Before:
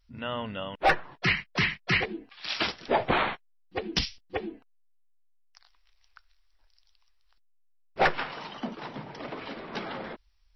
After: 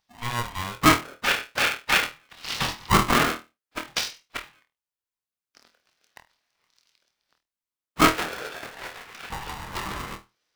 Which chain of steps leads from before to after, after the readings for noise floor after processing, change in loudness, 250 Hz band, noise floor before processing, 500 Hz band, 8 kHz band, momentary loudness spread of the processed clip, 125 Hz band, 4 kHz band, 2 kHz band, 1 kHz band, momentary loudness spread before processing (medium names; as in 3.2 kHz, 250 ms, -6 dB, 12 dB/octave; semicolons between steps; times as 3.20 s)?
under -85 dBFS, +5.5 dB, +7.0 dB, -65 dBFS, 0.0 dB, no reading, 19 LU, +5.0 dB, +5.0 dB, +3.5 dB, +4.5 dB, 14 LU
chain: LFO high-pass saw up 0.43 Hz 360–1800 Hz; flutter echo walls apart 4.3 m, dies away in 0.25 s; polarity switched at an audio rate 480 Hz